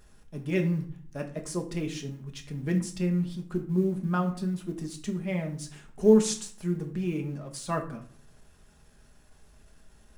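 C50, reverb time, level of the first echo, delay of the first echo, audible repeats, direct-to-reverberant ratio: 11.5 dB, 0.55 s, no echo, no echo, no echo, 2.5 dB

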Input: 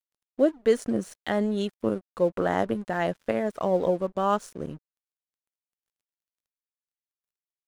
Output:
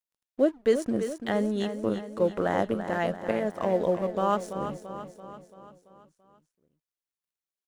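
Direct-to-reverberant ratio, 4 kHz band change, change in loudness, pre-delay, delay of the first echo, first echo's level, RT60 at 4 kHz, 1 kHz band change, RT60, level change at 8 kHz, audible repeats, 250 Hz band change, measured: no reverb, -1.0 dB, -1.0 dB, no reverb, 337 ms, -9.5 dB, no reverb, -1.0 dB, no reverb, no reading, 5, -1.0 dB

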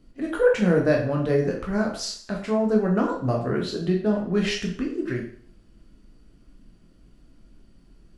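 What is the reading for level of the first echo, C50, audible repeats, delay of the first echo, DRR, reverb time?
no echo, 6.5 dB, no echo, no echo, -1.0 dB, 0.55 s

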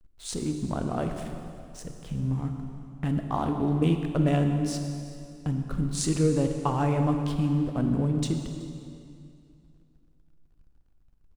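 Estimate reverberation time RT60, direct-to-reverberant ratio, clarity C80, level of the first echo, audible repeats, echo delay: 2.5 s, 5.0 dB, 6.5 dB, -21.5 dB, 1, 378 ms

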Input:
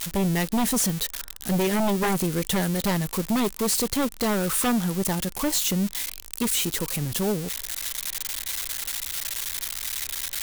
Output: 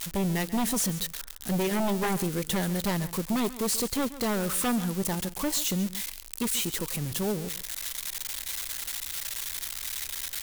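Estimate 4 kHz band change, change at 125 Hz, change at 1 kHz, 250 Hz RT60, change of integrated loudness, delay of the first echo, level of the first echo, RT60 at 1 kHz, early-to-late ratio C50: -4.0 dB, -4.0 dB, -4.0 dB, no reverb, -4.0 dB, 137 ms, -15.5 dB, no reverb, no reverb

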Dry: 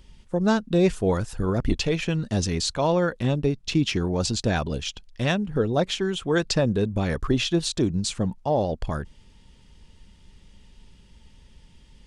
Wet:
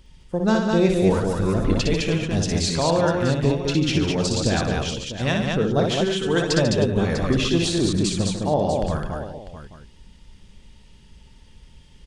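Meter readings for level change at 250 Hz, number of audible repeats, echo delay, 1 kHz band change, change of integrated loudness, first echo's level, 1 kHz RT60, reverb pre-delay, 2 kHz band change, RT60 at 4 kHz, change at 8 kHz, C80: +3.5 dB, 6, 60 ms, +3.0 dB, +3.0 dB, -4.5 dB, no reverb, no reverb, +3.0 dB, no reverb, +3.0 dB, no reverb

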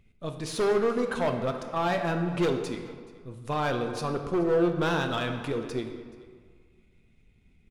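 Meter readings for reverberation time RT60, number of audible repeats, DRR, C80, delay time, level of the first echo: 1.8 s, 1, 5.0 dB, 8.0 dB, 428 ms, -21.0 dB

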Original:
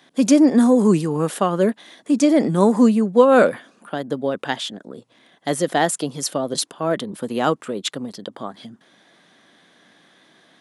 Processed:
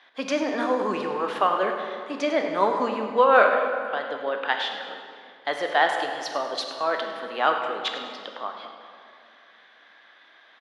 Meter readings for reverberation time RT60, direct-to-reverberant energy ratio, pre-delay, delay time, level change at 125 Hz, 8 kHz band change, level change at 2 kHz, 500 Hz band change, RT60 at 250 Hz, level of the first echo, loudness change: 2.3 s, 3.5 dB, 13 ms, 102 ms, under -20 dB, -17.0 dB, +3.0 dB, -5.0 dB, 2.8 s, -13.0 dB, -6.0 dB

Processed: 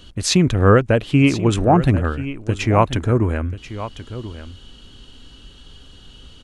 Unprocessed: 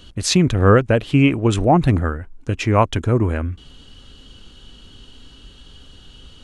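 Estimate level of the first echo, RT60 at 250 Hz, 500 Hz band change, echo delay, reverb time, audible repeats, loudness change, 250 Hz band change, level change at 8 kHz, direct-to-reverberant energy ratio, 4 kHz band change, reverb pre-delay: -13.5 dB, no reverb, 0.0 dB, 1036 ms, no reverb, 1, 0.0 dB, 0.0 dB, 0.0 dB, no reverb, 0.0 dB, no reverb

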